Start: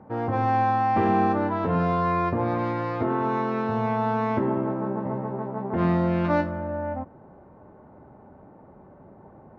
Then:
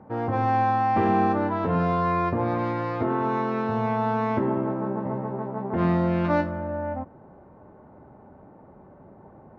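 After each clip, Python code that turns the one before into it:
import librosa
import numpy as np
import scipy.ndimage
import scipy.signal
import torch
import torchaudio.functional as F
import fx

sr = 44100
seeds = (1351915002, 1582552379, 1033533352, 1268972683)

y = x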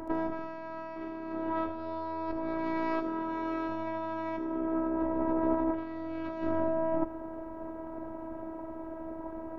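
y = fx.over_compress(x, sr, threshold_db=-34.0, ratio=-1.0)
y = fx.robotise(y, sr, hz=325.0)
y = fx.echo_wet_highpass(y, sr, ms=76, feedback_pct=52, hz=4700.0, wet_db=-6)
y = y * 10.0 ** (3.5 / 20.0)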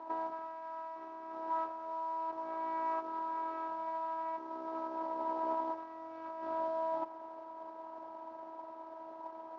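y = fx.cvsd(x, sr, bps=32000)
y = fx.bandpass_q(y, sr, hz=950.0, q=2.7)
y = y * 10.0 ** (1.5 / 20.0)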